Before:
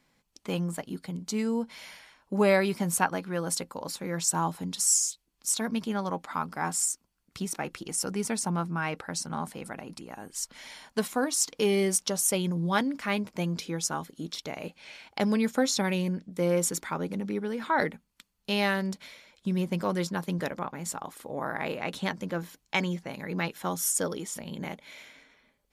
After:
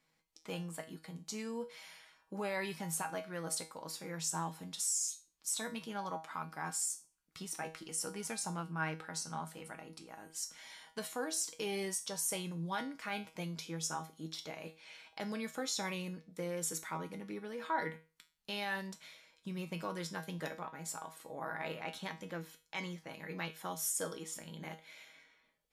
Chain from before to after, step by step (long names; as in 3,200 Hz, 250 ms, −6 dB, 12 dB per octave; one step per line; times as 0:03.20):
brickwall limiter −19 dBFS, peak gain reduction 9.5 dB
low-shelf EQ 400 Hz −6.5 dB
tuned comb filter 160 Hz, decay 0.32 s, harmonics all, mix 80%
level +2.5 dB